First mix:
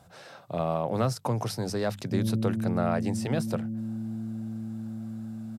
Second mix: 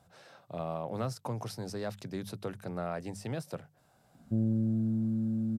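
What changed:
speech -8.0 dB; background: entry +2.20 s

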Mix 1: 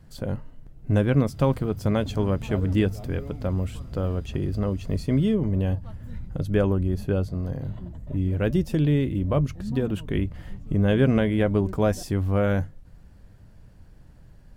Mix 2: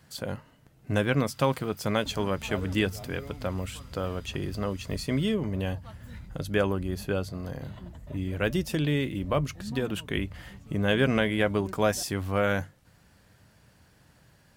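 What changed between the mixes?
speech: add high-pass 87 Hz; first sound: add steep high-pass 820 Hz 96 dB/octave; master: add tilt shelf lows -6.5 dB, about 740 Hz

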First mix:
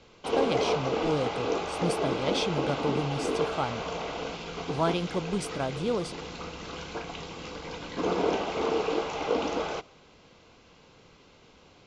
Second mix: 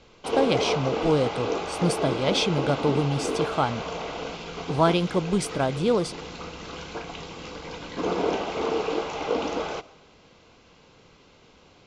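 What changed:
speech +6.5 dB; background: send +8.0 dB

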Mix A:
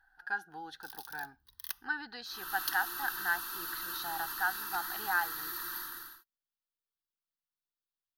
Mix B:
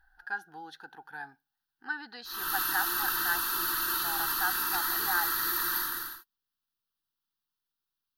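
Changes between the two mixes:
first sound: muted; second sound +9.5 dB

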